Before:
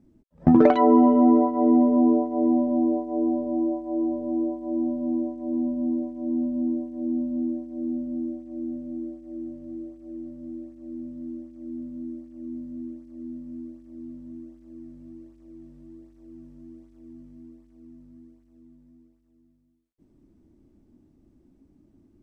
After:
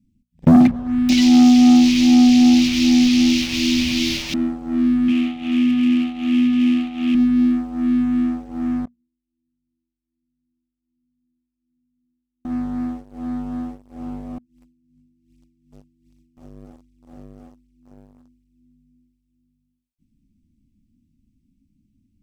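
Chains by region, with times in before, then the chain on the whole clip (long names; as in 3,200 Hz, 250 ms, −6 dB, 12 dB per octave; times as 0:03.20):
0:00.67–0:04.34: linear delta modulator 32 kbit/s, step −26.5 dBFS + multiband delay without the direct sound lows, highs 420 ms, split 180 Hz
0:05.08–0:07.15: variable-slope delta modulation 16 kbit/s + high-pass filter 150 Hz 6 dB per octave
0:08.85–0:12.45: leveller curve on the samples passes 1 + gate with flip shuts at −45 dBFS, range −34 dB
0:14.38–0:16.37: high-pass filter 79 Hz 6 dB per octave + compressor whose output falls as the input rises −52 dBFS
whole clip: elliptic band-stop filter 230–2,400 Hz, stop band 40 dB; mains-hum notches 60/120/180/240 Hz; leveller curve on the samples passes 3; level +5 dB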